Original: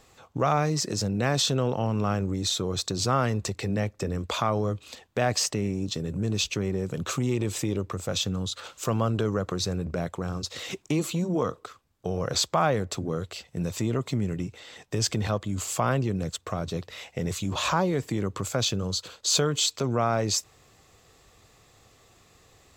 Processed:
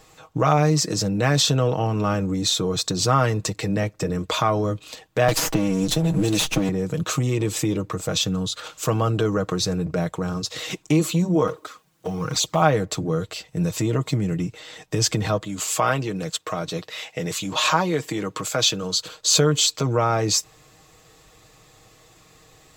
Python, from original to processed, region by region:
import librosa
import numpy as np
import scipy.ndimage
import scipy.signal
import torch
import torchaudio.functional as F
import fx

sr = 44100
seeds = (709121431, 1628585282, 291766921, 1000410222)

y = fx.chain(x, sr, fx.lower_of_two(delay_ms=6.1),
    fx.band_squash(depth_pct=100), at=(5.28, 6.69))
y = fx.chain(y, sr, fx.law_mismatch(coded='mu'),
    fx.highpass(hz=110.0, slope=12),
    fx.env_flanger(rest_ms=6.7, full_db=-21.0), at=(11.47, 12.62))
y = fx.chain(y, sr, fx.highpass(hz=290.0, slope=6),
    fx.peak_eq(hz=3000.0, db=3.0, octaves=1.9), at=(15.45, 19.0))
y = fx.high_shelf(y, sr, hz=12000.0, db=3.0)
y = y + 0.57 * np.pad(y, (int(6.4 * sr / 1000.0), 0))[:len(y)]
y = y * librosa.db_to_amplitude(4.0)